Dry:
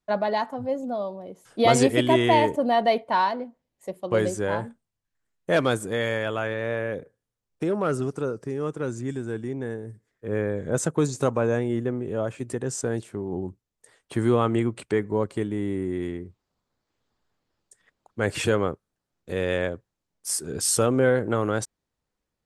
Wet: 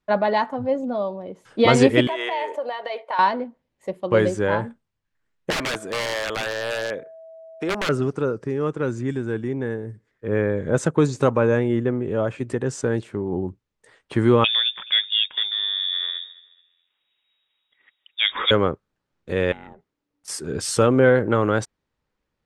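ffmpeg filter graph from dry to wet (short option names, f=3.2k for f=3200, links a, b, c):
-filter_complex "[0:a]asettb=1/sr,asplit=3[a][b][c];[a]atrim=end=2.074[d];[b]atrim=start=2.07:end=3.19,asetpts=PTS-STARTPTS,afade=t=in:d=0.004:c=qsin,afade=t=out:st=1.116:d=0.004:c=qsin,highpass=f=480:w=0.5412,highpass=f=480:w=1.3066,acompressor=threshold=-27dB:ratio=6:attack=3.2:release=140:knee=1:detection=peak[e];[c]atrim=start=3.186[f];[d][e]acrossfade=d=0.004:c1=hsin:c2=qsin[g];[g][f]acrossfade=d=0.004:c1=qsin:c2=hsin,asettb=1/sr,asplit=3[h][i][j];[h]atrim=end=5.504[k];[i]atrim=start=5.5:end=7.89,asetpts=PTS-STARTPTS,afade=t=in:d=0.004:c=qsin,afade=t=out:st=2.386:d=0.004:c=qsin,highpass=f=490:p=1,aeval=exprs='(mod(13.3*val(0)+1,2)-1)/13.3':c=same,aeval=exprs='val(0)+0.00631*sin(2*PI*650*n/s)':c=same[l];[j]atrim=start=7.886[m];[k][l]acrossfade=d=0.004:c1=hsin:c2=qsin[n];[n][m]acrossfade=d=0.004:c1=qsin:c2=hsin,asettb=1/sr,asplit=3[o][p][q];[o]atrim=end=14.444[r];[p]atrim=start=14.44:end=18.51,asetpts=PTS-STARTPTS,afade=t=in:d=0.004:c=qsin,afade=t=out:st=4.066:d=0.004:c=qsin,equalizer=f=120:t=o:w=0.61:g=-11.5,aecho=1:1:213|426|639:0.112|0.0348|0.0108,atrim=end_sample=179487,lowpass=f=3.2k:t=q:w=0.5098,lowpass=f=3.2k:t=q:w=0.6013,lowpass=f=3.2k:t=q:w=0.9,lowpass=f=3.2k:t=q:w=2.563,afreqshift=-3800[s];[q]atrim=start=18.506[t];[r][s]acrossfade=d=0.004:c1=hsin:c2=qsin[u];[u][t]acrossfade=d=0.004:c1=qsin:c2=hsin,asettb=1/sr,asplit=3[v][w][x];[v]atrim=end=19.524[y];[w]atrim=start=19.52:end=20.28,asetpts=PTS-STARTPTS,afade=t=in:d=0.004:c=qsin,afade=t=out:st=0.756:d=0.004:c=qsin,acompressor=threshold=-38dB:ratio=16:attack=3.2:release=140:knee=1:detection=peak,aeval=exprs='val(0)*sin(2*PI*290*n/s)':c=same[z];[x]atrim=start=20.276[aa];[y][z]acrossfade=d=0.004:c1=hsin:c2=qsin[ab];[ab][aa]acrossfade=d=0.004:c1=qsin:c2=hsin,lowpass=2.5k,aemphasis=mode=production:type=75fm,bandreject=f=700:w=12,volume=5.5dB"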